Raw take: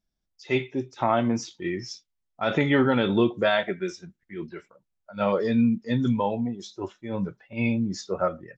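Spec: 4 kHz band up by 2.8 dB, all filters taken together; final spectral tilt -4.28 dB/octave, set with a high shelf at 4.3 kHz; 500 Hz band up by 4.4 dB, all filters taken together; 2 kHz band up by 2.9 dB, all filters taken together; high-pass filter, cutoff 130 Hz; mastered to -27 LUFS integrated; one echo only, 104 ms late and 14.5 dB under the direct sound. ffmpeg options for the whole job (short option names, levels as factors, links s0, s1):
-af "highpass=130,equalizer=f=500:t=o:g=5.5,equalizer=f=2000:t=o:g=3.5,equalizer=f=4000:t=o:g=6.5,highshelf=f=4300:g=-8.5,aecho=1:1:104:0.188,volume=0.668"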